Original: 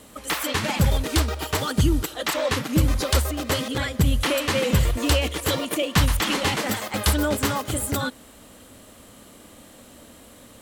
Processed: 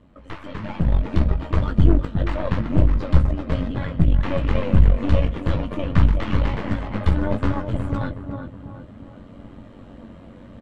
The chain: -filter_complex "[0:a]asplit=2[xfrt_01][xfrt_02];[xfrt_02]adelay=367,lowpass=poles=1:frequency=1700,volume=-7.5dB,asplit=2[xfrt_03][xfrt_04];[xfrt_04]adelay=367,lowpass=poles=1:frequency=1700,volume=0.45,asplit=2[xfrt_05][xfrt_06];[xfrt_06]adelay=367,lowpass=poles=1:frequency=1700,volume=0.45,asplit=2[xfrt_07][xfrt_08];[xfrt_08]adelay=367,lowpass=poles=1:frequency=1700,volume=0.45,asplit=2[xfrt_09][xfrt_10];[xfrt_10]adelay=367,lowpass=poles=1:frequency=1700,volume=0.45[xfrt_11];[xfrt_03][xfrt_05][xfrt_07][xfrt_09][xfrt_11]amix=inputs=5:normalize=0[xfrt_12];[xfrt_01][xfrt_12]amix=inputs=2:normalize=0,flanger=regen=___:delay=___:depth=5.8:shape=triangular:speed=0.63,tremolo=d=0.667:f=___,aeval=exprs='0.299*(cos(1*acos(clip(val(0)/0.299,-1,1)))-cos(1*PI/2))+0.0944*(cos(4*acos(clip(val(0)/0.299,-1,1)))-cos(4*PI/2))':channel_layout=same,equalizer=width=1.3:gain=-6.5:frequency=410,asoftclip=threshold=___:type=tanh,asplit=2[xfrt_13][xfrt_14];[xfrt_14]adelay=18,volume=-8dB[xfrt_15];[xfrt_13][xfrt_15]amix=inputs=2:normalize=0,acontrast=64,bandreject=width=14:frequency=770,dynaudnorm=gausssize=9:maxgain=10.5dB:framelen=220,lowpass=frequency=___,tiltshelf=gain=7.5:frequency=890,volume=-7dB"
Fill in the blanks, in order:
75, 0.6, 93, -11dB, 2600